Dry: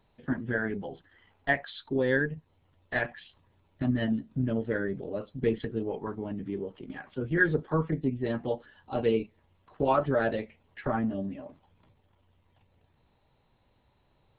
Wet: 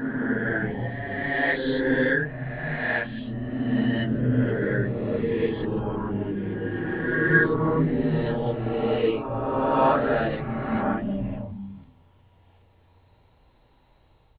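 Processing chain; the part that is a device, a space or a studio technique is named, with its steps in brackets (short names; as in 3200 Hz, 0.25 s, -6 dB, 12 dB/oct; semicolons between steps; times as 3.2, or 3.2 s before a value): dynamic EQ 550 Hz, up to -4 dB, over -40 dBFS, Q 0.9; bands offset in time highs, lows 0.49 s, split 160 Hz; reverse reverb (reverse; reverb RT60 2.5 s, pre-delay 10 ms, DRR -7 dB; reverse)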